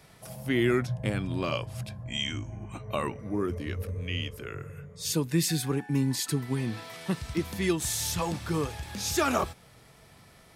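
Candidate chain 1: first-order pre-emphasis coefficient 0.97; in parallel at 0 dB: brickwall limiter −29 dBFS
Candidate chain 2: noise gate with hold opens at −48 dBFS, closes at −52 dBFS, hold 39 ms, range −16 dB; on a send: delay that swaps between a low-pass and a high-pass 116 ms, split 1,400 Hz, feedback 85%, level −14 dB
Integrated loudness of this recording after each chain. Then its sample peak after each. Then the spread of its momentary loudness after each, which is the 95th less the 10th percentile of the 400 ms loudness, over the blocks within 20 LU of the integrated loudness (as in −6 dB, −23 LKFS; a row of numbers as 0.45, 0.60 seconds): −33.5, −30.0 LKFS; −15.5, −13.0 dBFS; 18, 14 LU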